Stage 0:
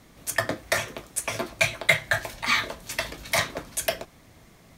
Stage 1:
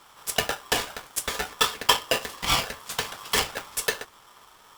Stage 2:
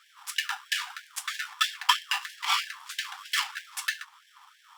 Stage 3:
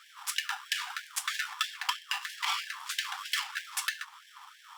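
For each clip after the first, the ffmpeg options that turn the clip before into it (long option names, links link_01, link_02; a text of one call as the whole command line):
ffmpeg -i in.wav -af "aeval=exprs='val(0)*sgn(sin(2*PI*1100*n/s))':channel_layout=same" out.wav
ffmpeg -i in.wav -af "lowpass=frequency=3700:poles=1,afftfilt=real='re*gte(b*sr/1024,720*pow(1600/720,0.5+0.5*sin(2*PI*3.1*pts/sr)))':imag='im*gte(b*sr/1024,720*pow(1600/720,0.5+0.5*sin(2*PI*3.1*pts/sr)))':win_size=1024:overlap=0.75" out.wav
ffmpeg -i in.wav -af "acompressor=threshold=-32dB:ratio=12,volume=4dB" out.wav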